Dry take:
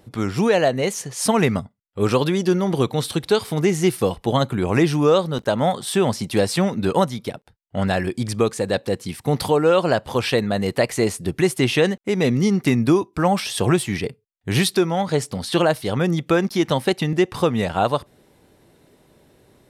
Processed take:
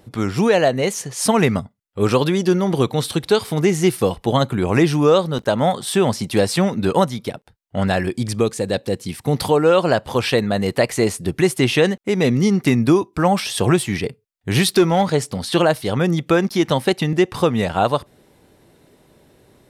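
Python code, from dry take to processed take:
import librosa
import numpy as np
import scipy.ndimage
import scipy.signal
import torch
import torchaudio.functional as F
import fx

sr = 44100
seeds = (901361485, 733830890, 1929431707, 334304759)

y = fx.dynamic_eq(x, sr, hz=1200.0, q=0.73, threshold_db=-36.0, ratio=4.0, max_db=-5, at=(8.18, 9.39))
y = fx.leveller(y, sr, passes=1, at=(14.68, 15.1))
y = y * librosa.db_to_amplitude(2.0)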